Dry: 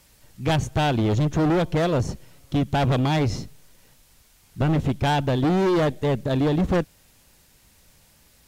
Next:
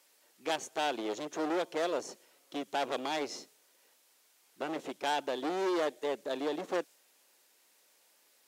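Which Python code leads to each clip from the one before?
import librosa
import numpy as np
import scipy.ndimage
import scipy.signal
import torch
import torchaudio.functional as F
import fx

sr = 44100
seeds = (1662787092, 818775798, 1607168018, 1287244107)

y = fx.dynamic_eq(x, sr, hz=7100.0, q=0.9, threshold_db=-51.0, ratio=4.0, max_db=4)
y = scipy.signal.sosfilt(scipy.signal.butter(4, 340.0, 'highpass', fs=sr, output='sos'), y)
y = y * 10.0 ** (-8.5 / 20.0)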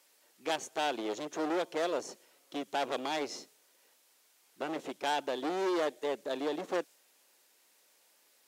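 y = x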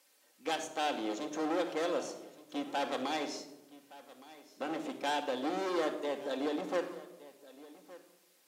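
y = x + 10.0 ** (-19.0 / 20.0) * np.pad(x, (int(1167 * sr / 1000.0), 0))[:len(x)]
y = fx.room_shoebox(y, sr, seeds[0], volume_m3=3200.0, walls='furnished', distance_m=2.1)
y = y * 10.0 ** (-2.5 / 20.0)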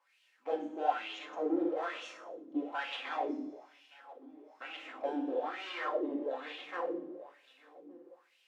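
y = fx.rev_double_slope(x, sr, seeds[1], early_s=0.87, late_s=2.7, knee_db=-18, drr_db=-1.0)
y = fx.wah_lfo(y, sr, hz=1.1, low_hz=270.0, high_hz=2900.0, q=4.0)
y = y * 10.0 ** (5.5 / 20.0)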